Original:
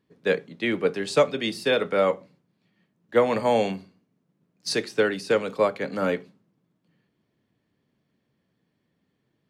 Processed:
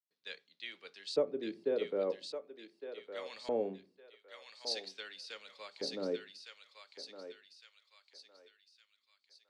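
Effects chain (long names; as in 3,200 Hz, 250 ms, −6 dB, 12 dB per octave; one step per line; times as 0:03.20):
noise gate with hold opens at −50 dBFS
auto-filter band-pass square 0.43 Hz 380–4,200 Hz
feedback echo with a high-pass in the loop 1,160 ms, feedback 45%, high-pass 1,100 Hz, level −4 dB
level −6 dB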